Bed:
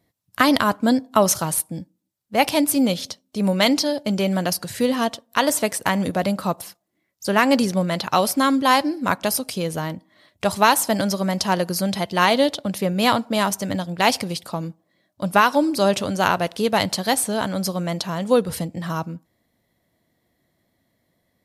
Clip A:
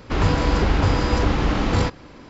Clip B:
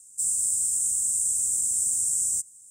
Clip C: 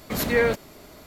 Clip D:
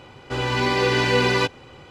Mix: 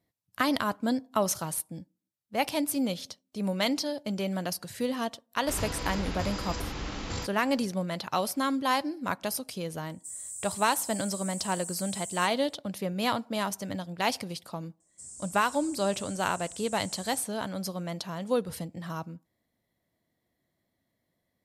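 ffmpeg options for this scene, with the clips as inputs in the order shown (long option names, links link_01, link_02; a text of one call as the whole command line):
ffmpeg -i bed.wav -i cue0.wav -i cue1.wav -filter_complex "[2:a]asplit=2[link_01][link_02];[0:a]volume=-10dB[link_03];[1:a]crystalizer=i=4:c=0[link_04];[link_01]aecho=1:1:1.8:0.52[link_05];[link_02]lowpass=3800[link_06];[link_04]atrim=end=2.29,asetpts=PTS-STARTPTS,volume=-16.5dB,afade=type=in:duration=0.004:curve=hsin,afade=type=out:start_time=2.286:duration=0.004:curve=hsin,adelay=236817S[link_07];[link_05]atrim=end=2.7,asetpts=PTS-STARTPTS,volume=-16dB,afade=type=in:duration=0.004:curve=hsin,afade=type=out:start_time=2.696:duration=0.004:curve=hsin,adelay=434826S[link_08];[link_06]atrim=end=2.7,asetpts=PTS-STARTPTS,volume=-5dB,afade=type=in:duration=0.004:curve=hsin,afade=type=out:start_time=2.696:duration=0.004:curve=hsin,adelay=14800[link_09];[link_03][link_07][link_08][link_09]amix=inputs=4:normalize=0" out.wav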